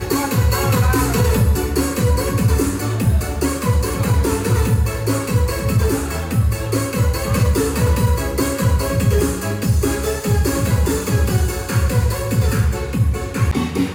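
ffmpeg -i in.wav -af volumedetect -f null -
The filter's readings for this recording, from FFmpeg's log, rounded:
mean_volume: -16.9 dB
max_volume: -6.2 dB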